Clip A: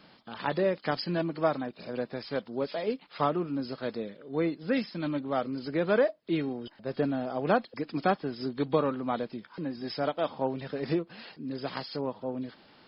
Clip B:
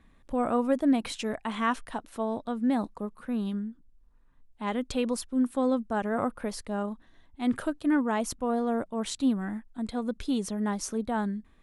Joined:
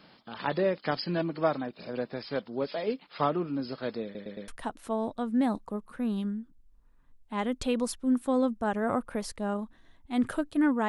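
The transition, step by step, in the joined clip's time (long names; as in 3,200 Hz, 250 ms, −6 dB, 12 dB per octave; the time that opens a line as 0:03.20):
clip A
0:04.04: stutter in place 0.11 s, 4 plays
0:04.48: continue with clip B from 0:01.77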